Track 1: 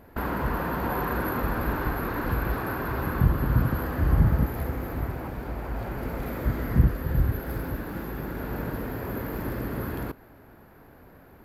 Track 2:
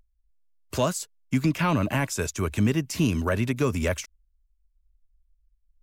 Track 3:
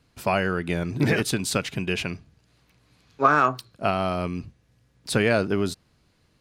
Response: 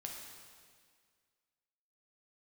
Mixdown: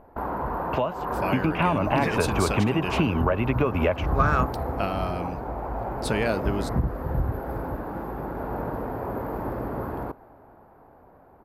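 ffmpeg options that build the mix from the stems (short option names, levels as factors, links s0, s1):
-filter_complex "[0:a]volume=0.562[s0];[1:a]lowpass=f=2800:t=q:w=3.3,volume=1.33[s1];[2:a]adelay=950,volume=0.376[s2];[s0][s1]amix=inputs=2:normalize=0,firequalizer=gain_entry='entry(190,0);entry(790,11);entry(1700,-4);entry(3500,-10)':delay=0.05:min_phase=1,acompressor=threshold=0.0794:ratio=12,volume=1[s3];[s2][s3]amix=inputs=2:normalize=0,dynaudnorm=f=130:g=21:m=1.5"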